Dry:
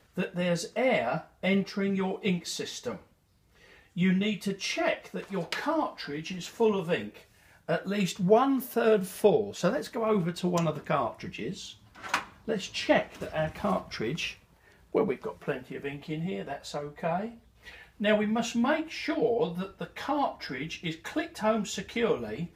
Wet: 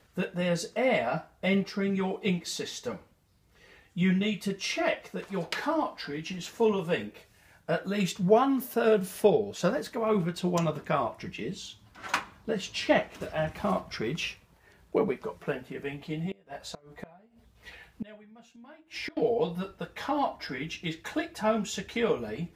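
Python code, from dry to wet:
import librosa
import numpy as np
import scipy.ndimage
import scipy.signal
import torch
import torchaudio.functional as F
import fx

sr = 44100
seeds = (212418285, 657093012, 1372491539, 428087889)

y = fx.gate_flip(x, sr, shuts_db=-25.0, range_db=-25, at=(16.26, 19.17))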